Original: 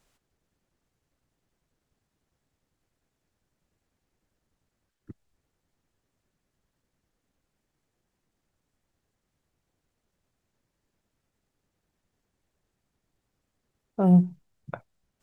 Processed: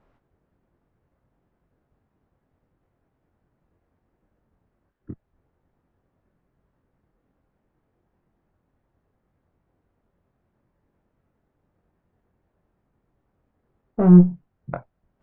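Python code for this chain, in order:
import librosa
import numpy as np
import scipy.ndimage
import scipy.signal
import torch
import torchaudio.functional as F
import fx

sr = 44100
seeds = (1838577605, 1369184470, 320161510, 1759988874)

y = fx.diode_clip(x, sr, knee_db=-26.0)
y = scipy.signal.sosfilt(scipy.signal.butter(2, 1300.0, 'lowpass', fs=sr, output='sos'), y)
y = fx.doubler(y, sr, ms=23.0, db=-5)
y = y * 10.0 ** (8.0 / 20.0)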